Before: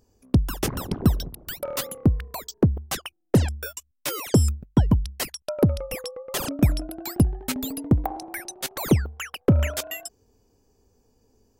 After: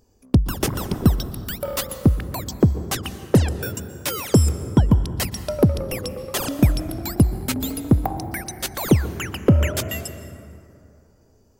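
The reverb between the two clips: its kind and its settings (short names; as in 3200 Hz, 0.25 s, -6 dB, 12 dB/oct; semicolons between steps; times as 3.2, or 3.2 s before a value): plate-style reverb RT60 2.8 s, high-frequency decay 0.45×, pre-delay 0.11 s, DRR 11.5 dB; gain +3 dB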